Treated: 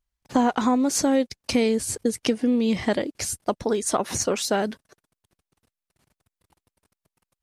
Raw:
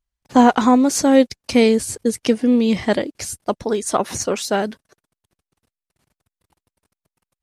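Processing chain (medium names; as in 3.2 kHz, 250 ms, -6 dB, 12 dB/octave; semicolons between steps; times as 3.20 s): compression 3:1, threshold -20 dBFS, peak gain reduction 9.5 dB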